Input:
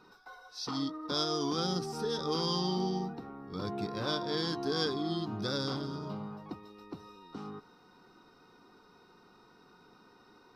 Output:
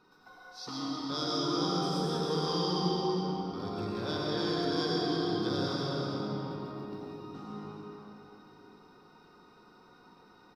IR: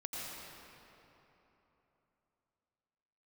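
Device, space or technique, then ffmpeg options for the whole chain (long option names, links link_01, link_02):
cave: -filter_complex "[0:a]aecho=1:1:316:0.376[link_01];[1:a]atrim=start_sample=2205[link_02];[link_01][link_02]afir=irnorm=-1:irlink=0"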